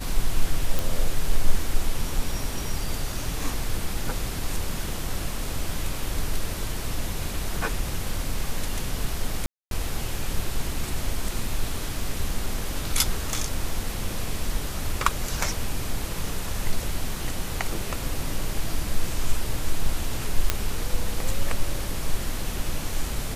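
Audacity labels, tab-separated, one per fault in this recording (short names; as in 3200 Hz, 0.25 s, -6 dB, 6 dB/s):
0.790000	0.790000	pop
9.460000	9.710000	gap 0.252 s
20.500000	20.500000	pop -4 dBFS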